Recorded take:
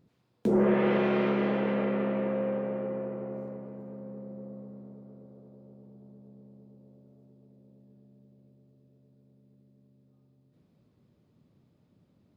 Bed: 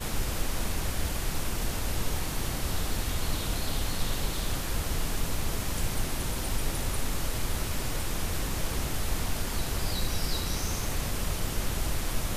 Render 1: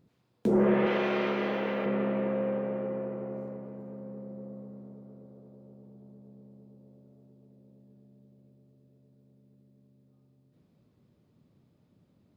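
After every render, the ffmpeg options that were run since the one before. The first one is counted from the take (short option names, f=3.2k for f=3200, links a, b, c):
-filter_complex "[0:a]asettb=1/sr,asplit=3[a][b][c];[a]atrim=end=0.864[d];[b]atrim=start=0.86:end=1.86,asetpts=PTS-STARTPTS,afade=t=in:d=0.004:c=qsin,afade=t=out:st=0.996:d=0.004:c=qsin,aemphasis=mode=production:type=bsi[e];[c]atrim=start=1.856[f];[d][e]acrossfade=d=0.004:c1=hsin:c2=qsin[g];[g][f]acrossfade=d=0.004:c1=qsin:c2=hsin"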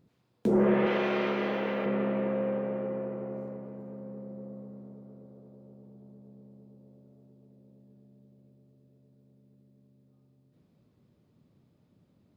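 -af anull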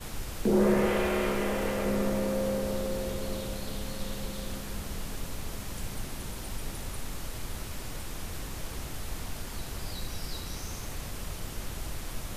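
-filter_complex "[1:a]volume=-7dB[a];[0:a][a]amix=inputs=2:normalize=0"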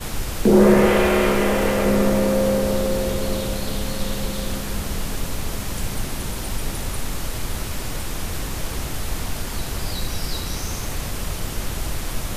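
-af "volume=10.5dB"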